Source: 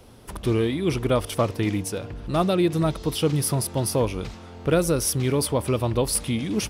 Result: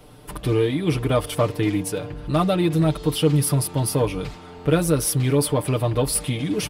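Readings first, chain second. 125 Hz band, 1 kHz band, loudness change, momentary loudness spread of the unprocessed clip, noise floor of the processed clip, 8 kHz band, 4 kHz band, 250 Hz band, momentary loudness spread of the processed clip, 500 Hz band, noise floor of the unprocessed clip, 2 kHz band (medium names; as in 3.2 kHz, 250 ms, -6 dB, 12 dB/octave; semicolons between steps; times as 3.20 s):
+4.0 dB, +1.5 dB, +2.0 dB, 9 LU, -42 dBFS, +1.5 dB, +1.5 dB, +2.0 dB, 9 LU, +1.5 dB, -42 dBFS, +1.5 dB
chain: in parallel at -11 dB: overload inside the chain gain 25 dB; on the sum: peaking EQ 5.9 kHz -5 dB 0.54 oct; comb 6.7 ms, depth 72%; trim -1 dB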